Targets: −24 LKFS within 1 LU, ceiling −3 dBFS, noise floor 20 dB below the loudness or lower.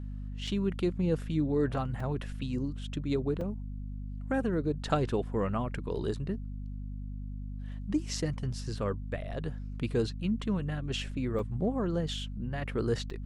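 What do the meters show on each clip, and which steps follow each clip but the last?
number of dropouts 5; longest dropout 3.6 ms; mains hum 50 Hz; hum harmonics up to 250 Hz; level of the hum −36 dBFS; integrated loudness −33.5 LKFS; sample peak −14.5 dBFS; target loudness −24.0 LKFS
→ repair the gap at 0:00.47/0:02.00/0:03.41/0:11.39/0:13.10, 3.6 ms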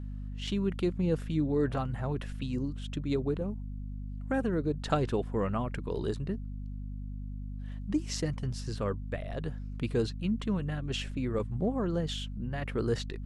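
number of dropouts 0; mains hum 50 Hz; hum harmonics up to 250 Hz; level of the hum −36 dBFS
→ hum removal 50 Hz, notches 5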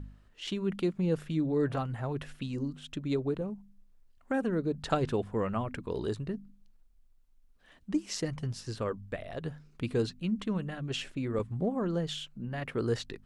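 mains hum none found; integrated loudness −33.5 LKFS; sample peak −13.5 dBFS; target loudness −24.0 LKFS
→ level +9.5 dB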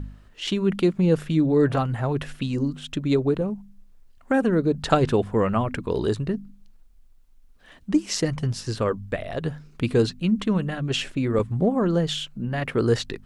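integrated loudness −24.0 LKFS; sample peak −4.0 dBFS; background noise floor −52 dBFS

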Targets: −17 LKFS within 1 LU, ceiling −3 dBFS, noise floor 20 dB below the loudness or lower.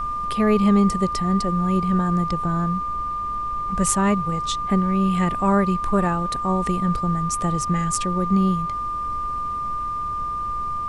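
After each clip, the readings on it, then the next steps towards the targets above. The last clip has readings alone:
interfering tone 1,200 Hz; level of the tone −24 dBFS; background noise floor −27 dBFS; target noise floor −42 dBFS; integrated loudness −22.0 LKFS; sample peak −3.5 dBFS; target loudness −17.0 LKFS
→ notch filter 1,200 Hz, Q 30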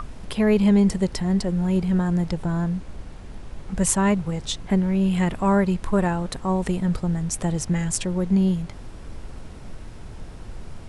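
interfering tone none found; background noise floor −39 dBFS; target noise floor −43 dBFS
→ noise reduction from a noise print 6 dB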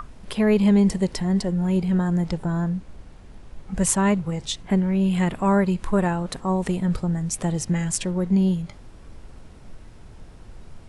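background noise floor −45 dBFS; integrated loudness −22.5 LKFS; sample peak −4.5 dBFS; target loudness −17.0 LKFS
→ level +5.5 dB
brickwall limiter −3 dBFS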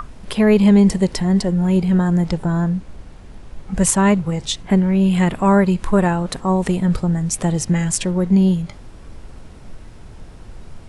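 integrated loudness −17.5 LKFS; sample peak −3.0 dBFS; background noise floor −39 dBFS

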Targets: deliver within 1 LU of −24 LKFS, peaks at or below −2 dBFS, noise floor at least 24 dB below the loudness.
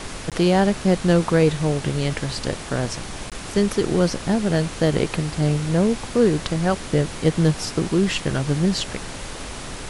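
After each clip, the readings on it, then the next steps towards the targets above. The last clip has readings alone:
number of dropouts 2; longest dropout 17 ms; background noise floor −34 dBFS; target noise floor −46 dBFS; integrated loudness −21.5 LKFS; sample peak −4.5 dBFS; target loudness −24.0 LKFS
→ repair the gap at 0:00.30/0:03.30, 17 ms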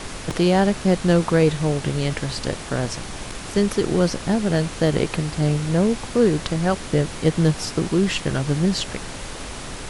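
number of dropouts 0; background noise floor −34 dBFS; target noise floor −46 dBFS
→ noise reduction from a noise print 12 dB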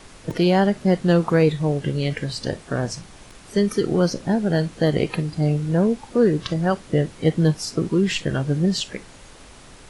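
background noise floor −45 dBFS; target noise floor −46 dBFS
→ noise reduction from a noise print 6 dB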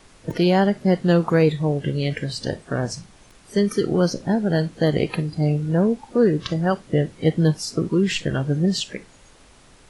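background noise floor −51 dBFS; integrated loudness −21.5 LKFS; sample peak −5.0 dBFS; target loudness −24.0 LKFS
→ level −2.5 dB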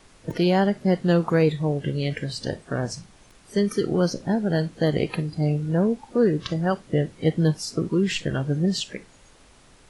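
integrated loudness −24.0 LKFS; sample peak −7.5 dBFS; background noise floor −54 dBFS

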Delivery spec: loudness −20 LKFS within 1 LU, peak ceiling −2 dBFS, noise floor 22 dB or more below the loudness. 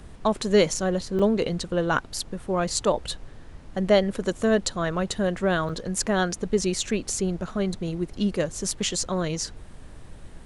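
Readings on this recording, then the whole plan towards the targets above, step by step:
number of dropouts 2; longest dropout 5.0 ms; background noise floor −45 dBFS; target noise floor −48 dBFS; integrated loudness −25.5 LKFS; sample peak −6.0 dBFS; target loudness −20.0 LKFS
→ repair the gap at 0:01.19/0:05.69, 5 ms
noise reduction from a noise print 6 dB
level +5.5 dB
brickwall limiter −2 dBFS

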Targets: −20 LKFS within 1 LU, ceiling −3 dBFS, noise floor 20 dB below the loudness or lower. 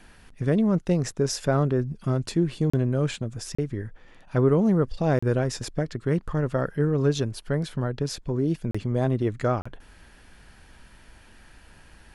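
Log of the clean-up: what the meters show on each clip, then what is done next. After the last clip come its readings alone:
number of dropouts 5; longest dropout 35 ms; integrated loudness −25.5 LKFS; sample peak −9.5 dBFS; target loudness −20.0 LKFS
→ repair the gap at 0:02.70/0:03.55/0:05.19/0:08.71/0:09.62, 35 ms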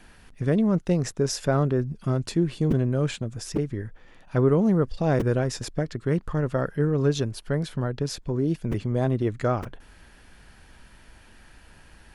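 number of dropouts 0; integrated loudness −25.5 LKFS; sample peak −9.5 dBFS; target loudness −20.0 LKFS
→ level +5.5 dB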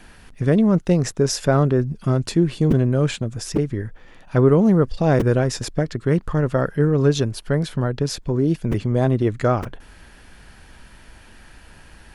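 integrated loudness −20.0 LKFS; sample peak −4.0 dBFS; background noise floor −47 dBFS

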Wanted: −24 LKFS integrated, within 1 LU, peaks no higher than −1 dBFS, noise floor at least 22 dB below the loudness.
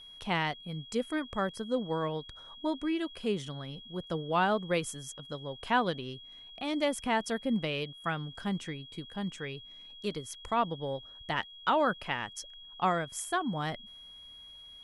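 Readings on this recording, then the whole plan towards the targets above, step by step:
interfering tone 3,300 Hz; level of the tone −48 dBFS; integrated loudness −33.5 LKFS; sample peak −15.0 dBFS; target loudness −24.0 LKFS
→ notch filter 3,300 Hz, Q 30
level +9.5 dB

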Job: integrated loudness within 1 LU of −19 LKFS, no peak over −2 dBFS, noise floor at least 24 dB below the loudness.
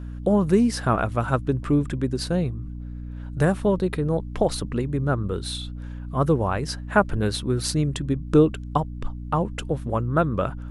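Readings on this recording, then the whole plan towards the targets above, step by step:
mains hum 60 Hz; hum harmonics up to 300 Hz; level of the hum −31 dBFS; integrated loudness −24.0 LKFS; sample peak −4.5 dBFS; target loudness −19.0 LKFS
→ hum removal 60 Hz, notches 5
level +5 dB
brickwall limiter −2 dBFS

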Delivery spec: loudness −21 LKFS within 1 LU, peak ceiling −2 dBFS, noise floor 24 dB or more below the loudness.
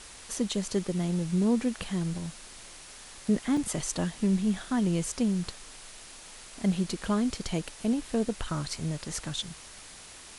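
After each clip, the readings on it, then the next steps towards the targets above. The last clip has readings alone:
number of dropouts 1; longest dropout 2.9 ms; background noise floor −48 dBFS; target noise floor −54 dBFS; integrated loudness −30.0 LKFS; sample peak −15.5 dBFS; target loudness −21.0 LKFS
→ repair the gap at 0:03.57, 2.9 ms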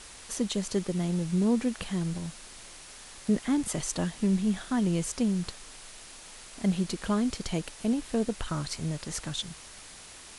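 number of dropouts 0; background noise floor −48 dBFS; target noise floor −54 dBFS
→ broadband denoise 6 dB, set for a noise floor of −48 dBFS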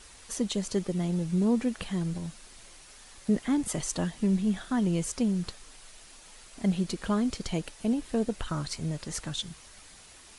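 background noise floor −52 dBFS; target noise floor −55 dBFS
→ broadband denoise 6 dB, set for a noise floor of −52 dBFS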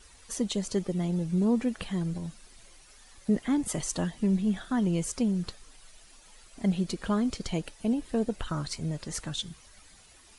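background noise floor −56 dBFS; integrated loudness −30.5 LKFS; sample peak −15.5 dBFS; target loudness −21.0 LKFS
→ level +9.5 dB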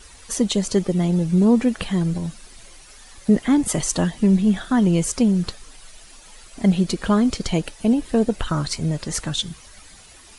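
integrated loudness −21.0 LKFS; sample peak −6.0 dBFS; background noise floor −46 dBFS

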